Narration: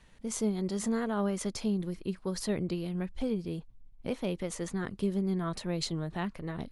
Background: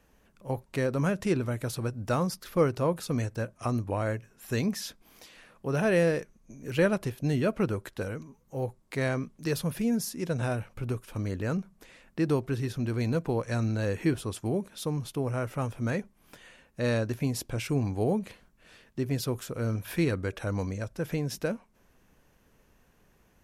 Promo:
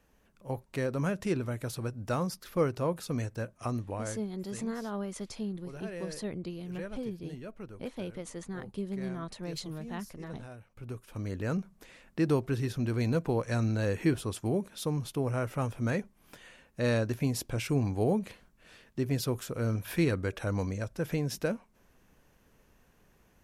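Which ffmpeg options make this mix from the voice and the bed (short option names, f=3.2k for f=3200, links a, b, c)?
-filter_complex "[0:a]adelay=3750,volume=-5.5dB[a];[1:a]volume=13dB,afade=t=out:st=3.65:d=0.81:silence=0.211349,afade=t=in:st=10.6:d=1.07:silence=0.149624[b];[a][b]amix=inputs=2:normalize=0"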